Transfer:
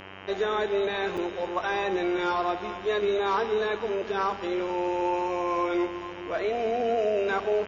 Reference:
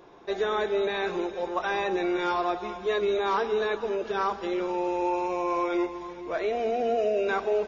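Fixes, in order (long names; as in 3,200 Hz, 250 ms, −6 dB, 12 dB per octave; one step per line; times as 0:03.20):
hum removal 96 Hz, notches 33
repair the gap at 0:01.17, 5.5 ms
echo removal 132 ms −22 dB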